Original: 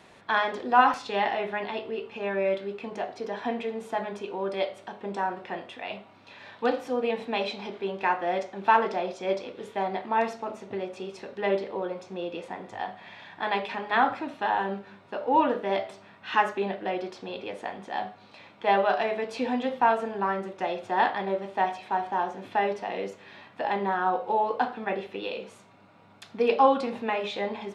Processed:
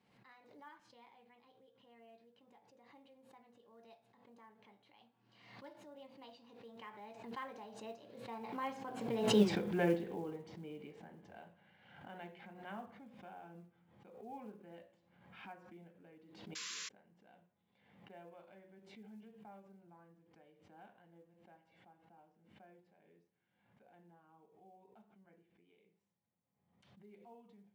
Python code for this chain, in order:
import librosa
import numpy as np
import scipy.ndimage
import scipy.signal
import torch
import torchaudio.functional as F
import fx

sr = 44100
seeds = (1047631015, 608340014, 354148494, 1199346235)

y = fx.doppler_pass(x, sr, speed_mps=52, closest_m=3.5, pass_at_s=9.44)
y = fx.high_shelf(y, sr, hz=4600.0, db=-6.0)
y = fx.notch(y, sr, hz=640.0, q=12.0)
y = fx.spec_paint(y, sr, seeds[0], shape='noise', start_s=16.55, length_s=0.34, low_hz=990.0, high_hz=7500.0, level_db=-53.0)
y = fx.graphic_eq_31(y, sr, hz=(125, 200, 1250), db=(11, 12, -6))
y = fx.quant_float(y, sr, bits=4)
y = fx.pre_swell(y, sr, db_per_s=58.0)
y = F.gain(torch.from_numpy(y), 8.0).numpy()